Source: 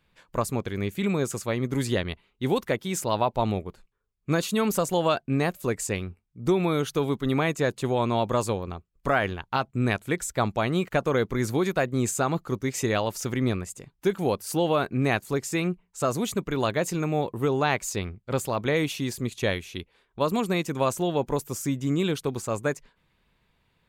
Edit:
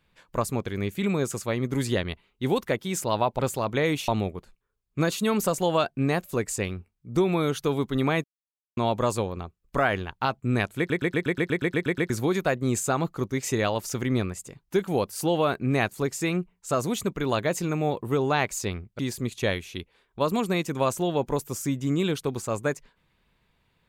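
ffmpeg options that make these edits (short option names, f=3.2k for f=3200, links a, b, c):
-filter_complex "[0:a]asplit=17[a][b][c][d][e][f][g][h][i][j][k][l][m][n][o][p][q];[a]atrim=end=3.392[r];[b]atrim=start=18.298:end=18.992[s];[c]atrim=start=3.388:end=7.55,asetpts=PTS-STARTPTS,afade=t=out:st=4.158:d=0.004:c=hsin[t];[d]atrim=start=7.55:end=8.08,asetpts=PTS-STARTPTS,volume=0[u];[e]atrim=start=8.08:end=10.212,asetpts=PTS-STARTPTS,afade=t=in:d=0.004:c=hsin[v];[f]atrim=start=10.088:end=10.212[w];[g]atrim=start=10.088:end=10.212[x];[h]atrim=start=10.088:end=10.212[y];[i]atrim=start=10.088:end=10.212[z];[j]atrim=start=10.088:end=10.212[aa];[k]atrim=start=10.088:end=10.212[ab];[l]atrim=start=10.088:end=10.212[ac];[m]atrim=start=10.088:end=10.212[ad];[n]atrim=start=10.088:end=10.212[ae];[o]atrim=start=10.088:end=10.212[af];[p]atrim=start=11.408:end=18.302[ag];[q]atrim=start=18.988[ah];[r][s]acrossfade=d=0.004:c1=hsin:c2=hsin[ai];[t][u][v]concat=n=3:v=0:a=1[aj];[ai][aj]acrossfade=d=0.004:c1=hsin:c2=hsin[ak];[ak][w]acrossfade=d=0.004:c1=hsin:c2=hsin[al];[al][x]acrossfade=d=0.004:c1=hsin:c2=hsin[am];[am][y]acrossfade=d=0.004:c1=hsin:c2=hsin[an];[an][z]acrossfade=d=0.004:c1=hsin:c2=hsin[ao];[ao][aa]acrossfade=d=0.004:c1=hsin:c2=hsin[ap];[ap][ab]acrossfade=d=0.004:c1=hsin:c2=hsin[aq];[aq][ac]acrossfade=d=0.004:c1=hsin:c2=hsin[ar];[ar][ad]acrossfade=d=0.004:c1=hsin:c2=hsin[as];[as][ae]acrossfade=d=0.004:c1=hsin:c2=hsin[at];[at][af]acrossfade=d=0.004:c1=hsin:c2=hsin[au];[au][ag]acrossfade=d=0.004:c1=hsin:c2=hsin[av];[av][ah]acrossfade=d=0.004:c1=hsin:c2=hsin"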